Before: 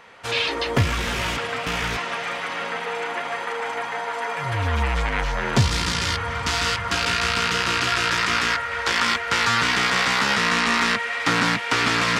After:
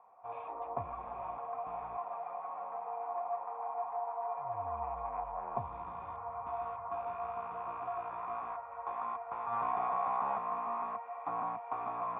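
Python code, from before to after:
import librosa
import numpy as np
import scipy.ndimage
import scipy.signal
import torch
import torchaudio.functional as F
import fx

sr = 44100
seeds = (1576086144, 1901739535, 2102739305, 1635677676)

y = fx.formant_cascade(x, sr, vowel='a')
y = fx.high_shelf(y, sr, hz=3200.0, db=-8.0)
y = fx.env_flatten(y, sr, amount_pct=70, at=(9.51, 10.37), fade=0.02)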